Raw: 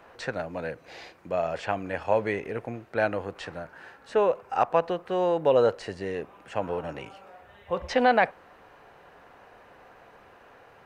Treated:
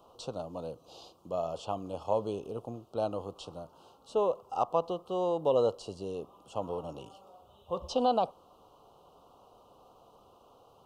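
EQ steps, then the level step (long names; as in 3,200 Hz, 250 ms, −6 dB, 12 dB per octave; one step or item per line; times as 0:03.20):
elliptic band-stop filter 1,200–3,000 Hz, stop band 70 dB
high-shelf EQ 4,500 Hz +5.5 dB
−5.0 dB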